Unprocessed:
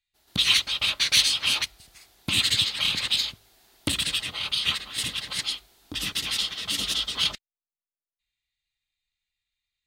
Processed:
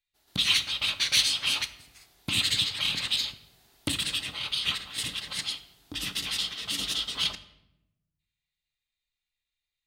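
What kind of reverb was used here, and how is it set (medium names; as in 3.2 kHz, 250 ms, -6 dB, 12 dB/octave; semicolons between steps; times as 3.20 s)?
simulated room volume 310 m³, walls mixed, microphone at 0.31 m; trim -3.5 dB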